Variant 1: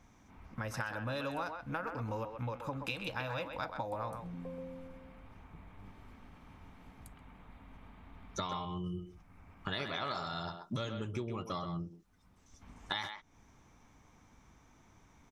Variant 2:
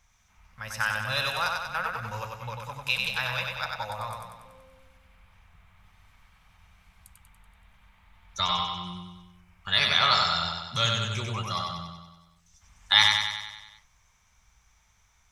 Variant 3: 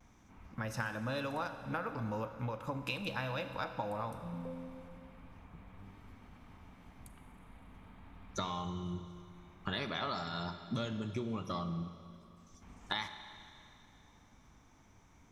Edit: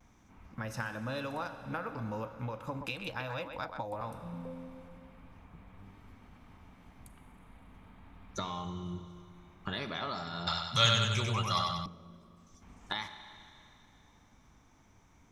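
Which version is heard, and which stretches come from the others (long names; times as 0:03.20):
3
0:02.81–0:04.01: punch in from 1
0:10.47–0:11.86: punch in from 2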